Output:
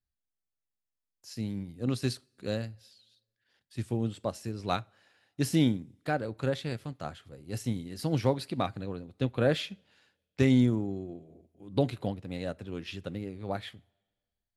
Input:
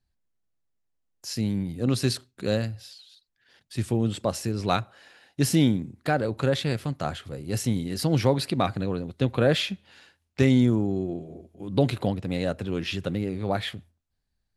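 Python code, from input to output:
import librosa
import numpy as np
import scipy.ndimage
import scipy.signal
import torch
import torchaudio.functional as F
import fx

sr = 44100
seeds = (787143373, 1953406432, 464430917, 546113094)

y = fx.rev_double_slope(x, sr, seeds[0], early_s=0.32, late_s=1.6, knee_db=-18, drr_db=19.0)
y = fx.upward_expand(y, sr, threshold_db=-35.0, expansion=1.5)
y = y * 10.0 ** (-3.5 / 20.0)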